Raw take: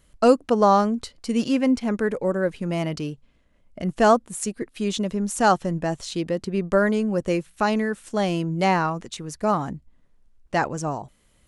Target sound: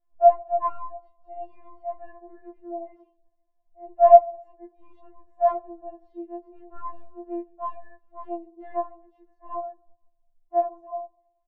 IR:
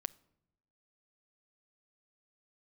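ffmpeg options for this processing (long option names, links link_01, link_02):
-filter_complex "[0:a]aecho=1:1:4.7:0.53,aeval=exprs='1.5*(cos(1*acos(clip(val(0)/1.5,-1,1)))-cos(1*PI/2))+0.531*(cos(2*acos(clip(val(0)/1.5,-1,1)))-cos(2*PI/2))+0.15*(cos(7*acos(clip(val(0)/1.5,-1,1)))-cos(7*PI/2))+0.0422*(cos(8*acos(clip(val(0)/1.5,-1,1)))-cos(8*PI/2))':channel_layout=same,lowpass=frequency=740:width_type=q:width=4.9,asplit=2[link_01][link_02];[1:a]atrim=start_sample=2205,lowpass=4900,adelay=26[link_03];[link_02][link_03]afir=irnorm=-1:irlink=0,volume=7.5dB[link_04];[link_01][link_04]amix=inputs=2:normalize=0,afftfilt=real='re*4*eq(mod(b,16),0)':imag='im*4*eq(mod(b,16),0)':win_size=2048:overlap=0.75,volume=-12.5dB"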